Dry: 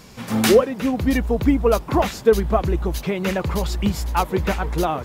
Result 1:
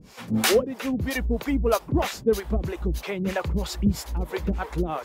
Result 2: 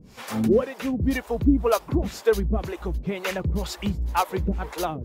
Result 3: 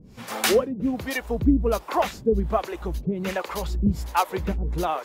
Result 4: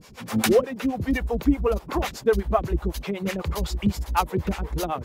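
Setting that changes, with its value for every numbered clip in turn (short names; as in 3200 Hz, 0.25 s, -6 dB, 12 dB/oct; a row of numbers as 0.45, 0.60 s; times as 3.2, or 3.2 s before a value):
harmonic tremolo, rate: 3.1, 2, 1.3, 8 Hz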